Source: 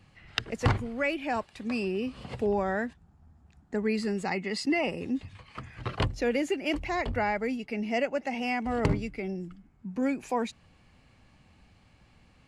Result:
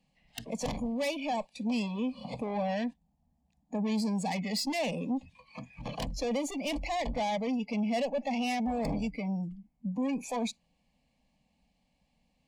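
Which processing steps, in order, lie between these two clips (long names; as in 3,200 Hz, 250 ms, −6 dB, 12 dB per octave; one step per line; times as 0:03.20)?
tube saturation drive 33 dB, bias 0.3
noise reduction from a noise print of the clip's start 16 dB
phaser with its sweep stopped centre 370 Hz, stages 6
level +7 dB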